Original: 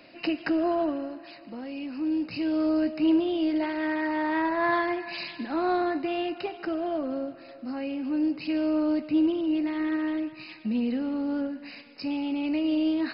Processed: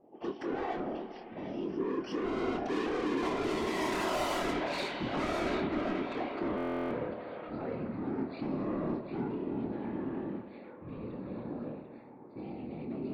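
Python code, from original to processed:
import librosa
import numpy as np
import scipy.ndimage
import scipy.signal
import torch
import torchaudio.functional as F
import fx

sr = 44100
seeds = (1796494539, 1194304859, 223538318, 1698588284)

y = fx.doppler_pass(x, sr, speed_mps=37, closest_m=21.0, pass_at_s=4.11)
y = scipy.signal.sosfilt(scipy.signal.butter(2, 180.0, 'highpass', fs=sr, output='sos'), y)
y = fx.band_shelf(y, sr, hz=530.0, db=10.5, octaves=2.4)
y = 10.0 ** (-35.5 / 20.0) * np.tanh(y / 10.0 ** (-35.5 / 20.0))
y = fx.whisperise(y, sr, seeds[0])
y = fx.doubler(y, sr, ms=26.0, db=-8.0)
y = fx.echo_stepped(y, sr, ms=743, hz=2800.0, octaves=-0.7, feedback_pct=70, wet_db=-5.5)
y = fx.rev_spring(y, sr, rt60_s=3.5, pass_ms=(50, 58), chirp_ms=35, drr_db=11.0)
y = fx.env_lowpass(y, sr, base_hz=490.0, full_db=-39.0)
y = fx.buffer_glitch(y, sr, at_s=(6.56,), block=1024, repeats=14)
y = F.gain(torch.from_numpy(y), 3.0).numpy()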